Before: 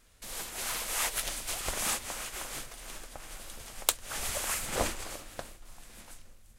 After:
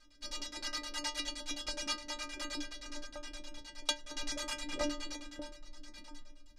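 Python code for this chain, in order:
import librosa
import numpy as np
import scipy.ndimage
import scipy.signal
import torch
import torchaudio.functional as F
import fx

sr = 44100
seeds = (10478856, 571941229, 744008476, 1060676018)

y = fx.filter_lfo_lowpass(x, sr, shape='square', hz=9.6, low_hz=340.0, high_hz=4900.0, q=2.3)
y = fx.stiff_resonator(y, sr, f0_hz=290.0, decay_s=0.25, stiffness=0.008)
y = fx.rider(y, sr, range_db=3, speed_s=0.5)
y = y * librosa.db_to_amplitude(10.0)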